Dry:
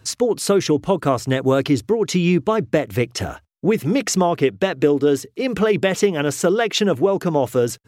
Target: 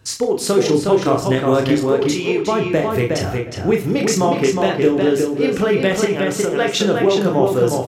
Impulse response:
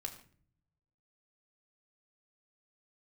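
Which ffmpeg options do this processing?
-filter_complex "[0:a]asettb=1/sr,asplit=3[link_01][link_02][link_03];[link_01]atrim=end=1.744[link_04];[link_02]atrim=start=1.74:end=2.45,asetpts=PTS-STARTPTS,afade=type=in:duration=0.004:curve=qsin,afade=type=out:start_time=0.706:duration=0.004:curve=qsin,highpass=340[link_05];[link_03]atrim=start=2.446[link_06];[link_04][link_05]acrossfade=duration=0.004:curve1=hsin:curve2=qsin[link_07];[link_07][link_06]acrossfade=duration=0.004:curve1=qsin:curve2=hsin,asettb=1/sr,asplit=3[link_08][link_09][link_10];[link_08]atrim=end=6.054[link_11];[link_09]atrim=start=6.05:end=6.58,asetpts=PTS-STARTPTS,afade=type=in:duration=0.004:curve=qsin,afade=type=out:start_time=0.526:duration=0.004:curve=qsin,acompressor=threshold=-19dB:ratio=6[link_12];[link_10]atrim=start=6.576[link_13];[link_11][link_12]acrossfade=duration=0.004:curve1=hsin:curve2=qsin[link_14];[link_14][link_13]acrossfade=duration=0.004:curve1=qsin:curve2=hsin,asplit=2[link_15][link_16];[link_16]adelay=363,lowpass=frequency=4700:poles=1,volume=-3.5dB,asplit=2[link_17][link_18];[link_18]adelay=363,lowpass=frequency=4700:poles=1,volume=0.16,asplit=2[link_19][link_20];[link_20]adelay=363,lowpass=frequency=4700:poles=1,volume=0.16[link_21];[link_15][link_17][link_19][link_21]amix=inputs=4:normalize=0,asplit=2[link_22][link_23];[1:a]atrim=start_sample=2205,adelay=31[link_24];[link_23][link_24]afir=irnorm=-1:irlink=0,volume=-0.5dB[link_25];[link_22][link_25]amix=inputs=2:normalize=0,volume=-1dB"

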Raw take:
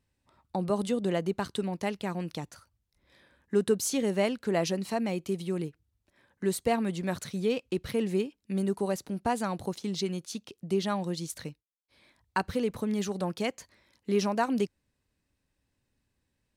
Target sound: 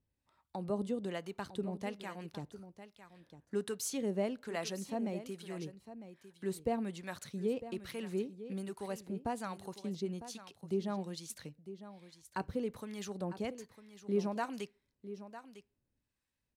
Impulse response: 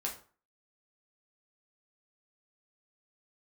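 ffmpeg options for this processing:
-filter_complex "[0:a]acrossover=split=770[link_01][link_02];[link_01]aeval=exprs='val(0)*(1-0.7/2+0.7/2*cos(2*PI*1.2*n/s))':channel_layout=same[link_03];[link_02]aeval=exprs='val(0)*(1-0.7/2-0.7/2*cos(2*PI*1.2*n/s))':channel_layout=same[link_04];[link_03][link_04]amix=inputs=2:normalize=0,aecho=1:1:953:0.224,asplit=2[link_05][link_06];[1:a]atrim=start_sample=2205,lowpass=3900[link_07];[link_06][link_07]afir=irnorm=-1:irlink=0,volume=-21dB[link_08];[link_05][link_08]amix=inputs=2:normalize=0,volume=-6dB"

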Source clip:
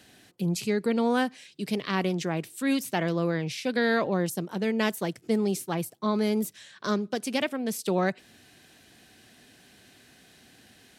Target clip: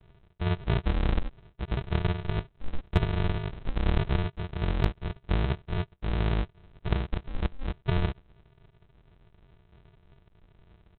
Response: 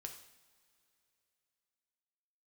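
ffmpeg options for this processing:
-af "aresample=8000,acrusher=samples=30:mix=1:aa=0.000001,aresample=44100,asoftclip=type=hard:threshold=-12.5dB"

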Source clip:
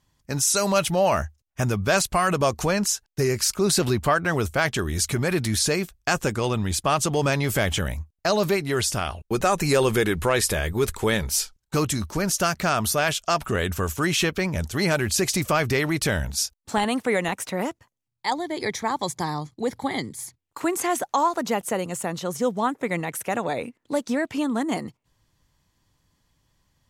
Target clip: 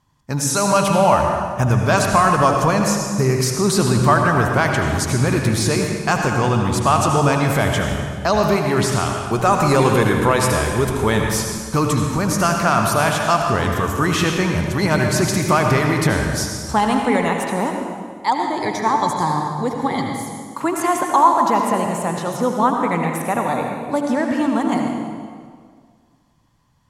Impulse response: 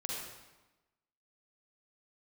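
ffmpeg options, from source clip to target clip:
-filter_complex "[0:a]asplit=3[link_01][link_02][link_03];[link_01]afade=type=out:start_time=5.19:duration=0.02[link_04];[link_02]aeval=exprs='0.2*(abs(mod(val(0)/0.2+3,4)-2)-1)':channel_layout=same,afade=type=in:start_time=5.19:duration=0.02,afade=type=out:start_time=5.72:duration=0.02[link_05];[link_03]afade=type=in:start_time=5.72:duration=0.02[link_06];[link_04][link_05][link_06]amix=inputs=3:normalize=0,equalizer=frequency=125:width_type=o:width=1:gain=7,equalizer=frequency=250:width_type=o:width=1:gain=4,equalizer=frequency=1000:width_type=o:width=1:gain=10,asplit=2[link_07][link_08];[1:a]atrim=start_sample=2205,asetrate=25137,aresample=44100[link_09];[link_08][link_09]afir=irnorm=-1:irlink=0,volume=-1.5dB[link_10];[link_07][link_10]amix=inputs=2:normalize=0,volume=-6dB"

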